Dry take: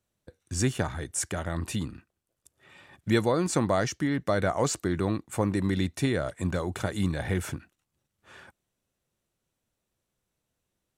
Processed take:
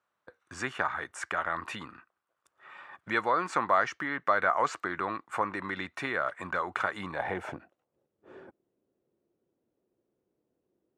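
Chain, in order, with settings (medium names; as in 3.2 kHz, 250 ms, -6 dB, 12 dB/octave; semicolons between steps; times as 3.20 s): dynamic bell 2.3 kHz, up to +5 dB, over -48 dBFS, Q 1.3; in parallel at +2.5 dB: compression, threshold -33 dBFS, peak gain reduction 14.5 dB; on the sum: band-pass sweep 1.2 kHz -> 360 Hz, 6.89–8.32 s; trim +5 dB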